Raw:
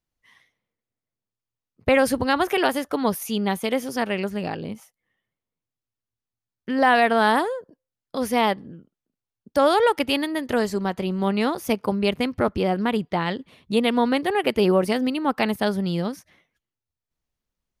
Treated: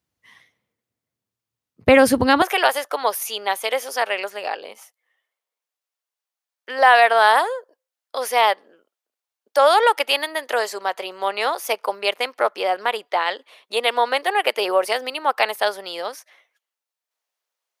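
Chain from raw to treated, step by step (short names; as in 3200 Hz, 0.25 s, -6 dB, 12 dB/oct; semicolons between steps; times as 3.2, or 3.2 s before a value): HPF 65 Hz 24 dB/oct, from 2.42 s 540 Hz; gain +5.5 dB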